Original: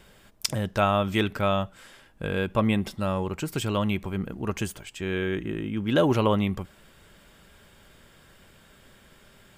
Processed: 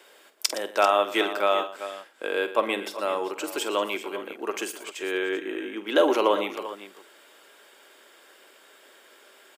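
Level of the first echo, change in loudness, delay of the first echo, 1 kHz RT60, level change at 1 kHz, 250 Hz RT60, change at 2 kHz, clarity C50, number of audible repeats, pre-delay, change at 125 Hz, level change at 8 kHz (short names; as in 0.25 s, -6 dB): -12.5 dB, +0.5 dB, 49 ms, none, +3.0 dB, none, +3.0 dB, none, 3, none, under -25 dB, +3.0 dB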